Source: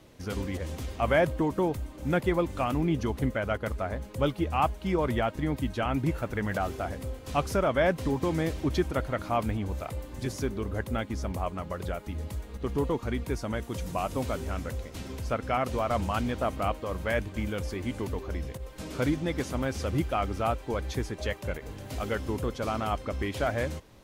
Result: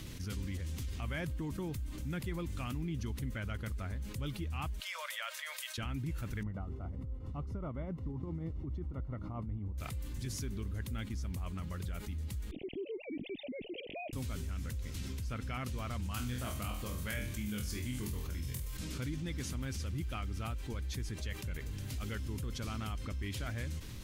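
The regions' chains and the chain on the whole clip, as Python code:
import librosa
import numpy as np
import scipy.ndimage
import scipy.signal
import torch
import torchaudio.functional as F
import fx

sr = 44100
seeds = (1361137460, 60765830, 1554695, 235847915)

y = fx.chain(x, sr, fx.steep_highpass(hz=560.0, slope=96),
    fx.peak_eq(hz=780.0, db=-14.0, octaves=0.48), at=(4.8, 5.78))
y = fx.chain(y, sr, fx.savgol(points=65),
    fx.tremolo_shape(shape='triangle', hz=7.5, depth_pct=80), at=(6.43, 9.78))
y = fx.chain(y, sr, fx.sine_speech(),
    fx.cheby1_bandstop(low_hz=660.0, high_hz=2500.0, order=3), at=(12.51, 14.13))
y = fx.chain(y, sr, fx.high_shelf(hz=6800.0, db=11.0),
    fx.room_flutter(wall_m=4.1, rt60_s=0.34), at=(16.14, 18.77))
y = fx.tone_stack(y, sr, knobs='6-0-2')
y = fx.env_flatten(y, sr, amount_pct=70)
y = y * librosa.db_to_amplitude(4.5)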